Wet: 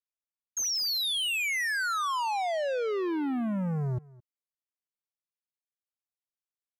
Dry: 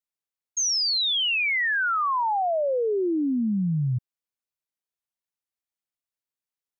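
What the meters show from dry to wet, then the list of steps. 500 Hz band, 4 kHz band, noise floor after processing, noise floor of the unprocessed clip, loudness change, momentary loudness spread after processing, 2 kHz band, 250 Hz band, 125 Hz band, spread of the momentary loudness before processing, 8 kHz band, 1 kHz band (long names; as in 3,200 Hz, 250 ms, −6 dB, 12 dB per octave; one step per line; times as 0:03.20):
−5.5 dB, −5.5 dB, below −85 dBFS, below −85 dBFS, −5.5 dB, 5 LU, −5.5 dB, −5.5 dB, −5.5 dB, 5 LU, can't be measured, −5.5 dB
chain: leveller curve on the samples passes 3
on a send: single-tap delay 217 ms −22.5 dB
on the sum: downsampling to 32,000 Hz
level −7 dB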